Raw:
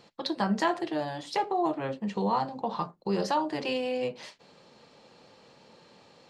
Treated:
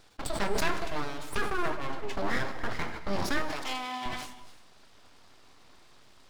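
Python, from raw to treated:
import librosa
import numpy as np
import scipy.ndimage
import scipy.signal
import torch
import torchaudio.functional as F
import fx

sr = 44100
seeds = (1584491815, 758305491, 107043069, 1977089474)

y = np.abs(x)
y = fx.highpass(y, sr, hz=300.0, slope=12, at=(3.5, 4.06))
y = fx.rev_gated(y, sr, seeds[0], gate_ms=380, shape='flat', drr_db=10.0)
y = fx.sustainer(y, sr, db_per_s=65.0)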